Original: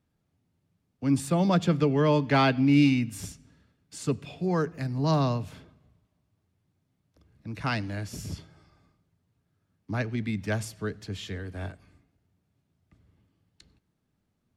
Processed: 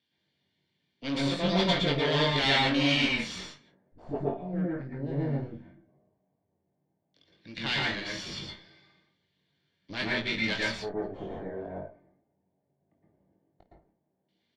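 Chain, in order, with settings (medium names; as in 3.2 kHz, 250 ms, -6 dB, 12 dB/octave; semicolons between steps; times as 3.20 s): self-modulated delay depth 0.17 ms; frequency weighting D; 4.42–5.77 s: spectral selection erased 350–1300 Hz; treble shelf 7.4 kHz +7 dB; comb of notches 1.3 kHz; saturation -20 dBFS, distortion -11 dB; Chebyshev shaper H 4 -12 dB, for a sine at -20 dBFS; 1.34–4.25 s: phase dispersion highs, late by 64 ms, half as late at 300 Hz; LFO low-pass square 0.14 Hz 710–3800 Hz; early reflections 21 ms -5 dB, 53 ms -14.5 dB; reverberation RT60 0.30 s, pre-delay 107 ms, DRR -4 dB; trim -7 dB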